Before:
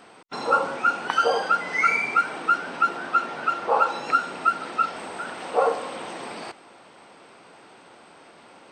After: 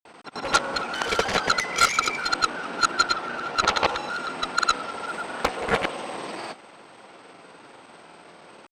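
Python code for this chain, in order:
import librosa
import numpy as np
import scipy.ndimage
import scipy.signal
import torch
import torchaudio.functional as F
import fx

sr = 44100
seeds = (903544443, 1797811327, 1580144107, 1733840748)

y = fx.local_reverse(x, sr, ms=128.0)
y = fx.granulator(y, sr, seeds[0], grain_ms=100.0, per_s=20.0, spray_ms=100.0, spread_st=0)
y = fx.cheby_harmonics(y, sr, harmonics=(7,), levels_db=(-9,), full_scale_db=-9.0)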